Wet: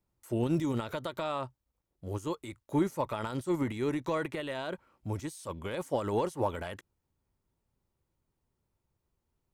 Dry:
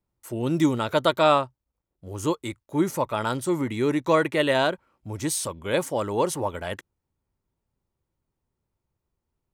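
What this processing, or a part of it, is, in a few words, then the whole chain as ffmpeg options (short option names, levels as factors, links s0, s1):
de-esser from a sidechain: -filter_complex "[0:a]asplit=2[s0][s1];[s1]highpass=4500,apad=whole_len=420286[s2];[s0][s2]sidechaincompress=threshold=0.00224:ratio=3:attack=1.1:release=41"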